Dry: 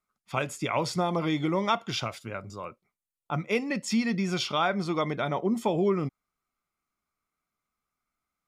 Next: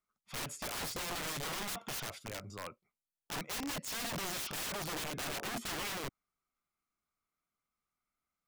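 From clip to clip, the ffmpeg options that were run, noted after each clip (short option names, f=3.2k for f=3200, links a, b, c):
-af "aeval=exprs='(mod(26.6*val(0)+1,2)-1)/26.6':c=same,volume=-5.5dB"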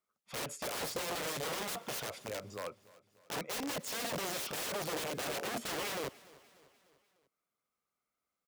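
-af "highpass=f=110:p=1,equalizer=f=500:w=1.8:g=8,aecho=1:1:297|594|891|1188:0.0891|0.0472|0.025|0.0133"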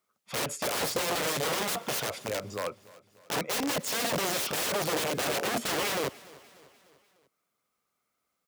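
-af "highpass=54,volume=8dB"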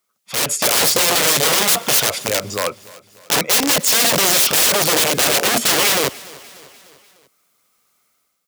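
-af "highshelf=f=2.4k:g=9,dynaudnorm=f=160:g=5:m=10dB,volume=1dB"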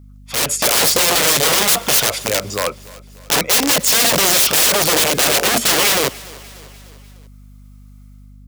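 -af "aeval=exprs='val(0)+0.00891*(sin(2*PI*50*n/s)+sin(2*PI*2*50*n/s)/2+sin(2*PI*3*50*n/s)/3+sin(2*PI*4*50*n/s)/4+sin(2*PI*5*50*n/s)/5)':c=same,volume=1dB"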